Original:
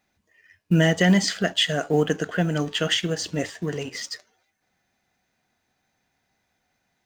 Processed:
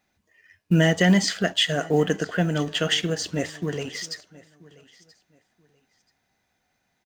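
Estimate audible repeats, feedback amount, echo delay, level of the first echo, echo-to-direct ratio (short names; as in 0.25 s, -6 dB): 1, no steady repeat, 0.981 s, -22.5 dB, -22.5 dB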